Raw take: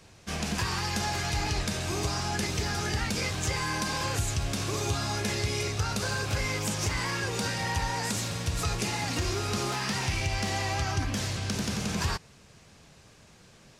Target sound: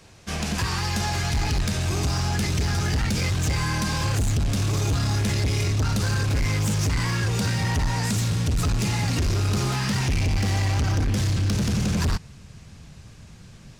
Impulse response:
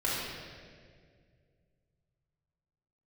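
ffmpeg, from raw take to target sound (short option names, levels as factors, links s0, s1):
-af "asubboost=boost=3.5:cutoff=220,acontrast=84,asoftclip=type=hard:threshold=0.158,volume=0.668"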